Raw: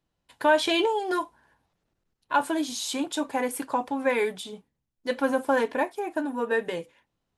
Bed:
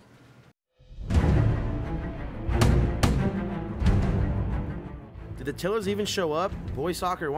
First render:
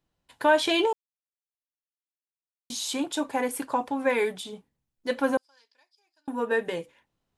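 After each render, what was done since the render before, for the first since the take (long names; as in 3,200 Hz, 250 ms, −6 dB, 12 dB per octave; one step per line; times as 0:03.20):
0:00.93–0:02.70: silence
0:05.37–0:06.28: resonant band-pass 4,900 Hz, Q 19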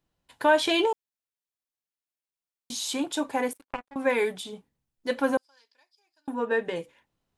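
0:03.53–0:03.96: power curve on the samples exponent 3
0:06.34–0:06.76: high-frequency loss of the air 67 metres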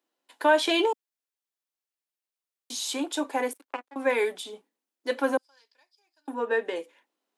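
Butterworth high-pass 260 Hz 36 dB per octave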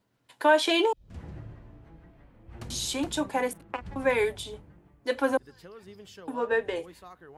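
mix in bed −20.5 dB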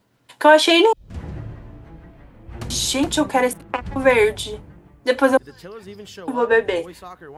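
level +10 dB
brickwall limiter −1 dBFS, peak gain reduction 1.5 dB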